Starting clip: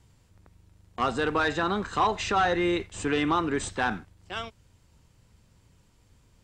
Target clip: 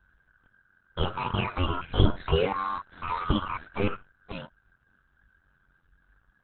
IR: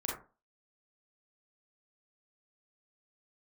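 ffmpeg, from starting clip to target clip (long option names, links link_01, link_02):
-af "afftfilt=real='real(if(between(b,1,1008),(2*floor((b-1)/48)+1)*48-b,b),0)':imag='imag(if(between(b,1,1008),(2*floor((b-1)/48)+1)*48-b,b),0)*if(between(b,1,1008),-1,1)':win_size=2048:overlap=0.75,aeval=exprs='val(0)*sin(2*PI*28*n/s)':channel_layout=same,aemphasis=mode=reproduction:type=riaa,asetrate=72056,aresample=44100,atempo=0.612027,volume=-1.5dB" -ar 48000 -c:a libopus -b:a 8k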